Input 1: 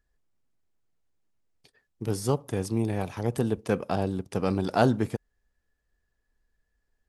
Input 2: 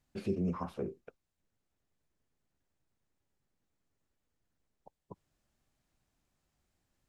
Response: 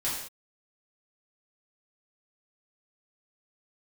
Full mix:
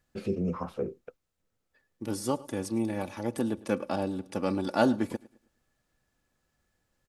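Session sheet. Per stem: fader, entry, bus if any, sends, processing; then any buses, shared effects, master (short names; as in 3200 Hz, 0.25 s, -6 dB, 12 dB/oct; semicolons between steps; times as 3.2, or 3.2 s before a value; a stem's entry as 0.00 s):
-3.0 dB, 0.00 s, muted 1.17–1.73, no send, echo send -20.5 dB, HPF 120 Hz; comb 3.5 ms, depth 61%
+2.5 dB, 0.00 s, no send, no echo send, small resonant body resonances 500/1300 Hz, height 8 dB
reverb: off
echo: feedback echo 0.106 s, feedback 35%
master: dry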